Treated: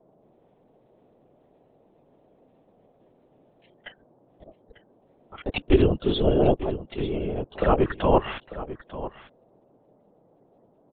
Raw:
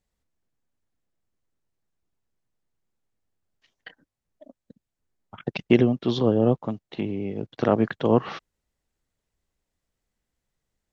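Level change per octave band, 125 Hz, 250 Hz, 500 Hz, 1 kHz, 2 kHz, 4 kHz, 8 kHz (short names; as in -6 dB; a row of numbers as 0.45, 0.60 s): 0.0 dB, -2.5 dB, +1.0 dB, +4.0 dB, 0.0 dB, +2.5 dB, n/a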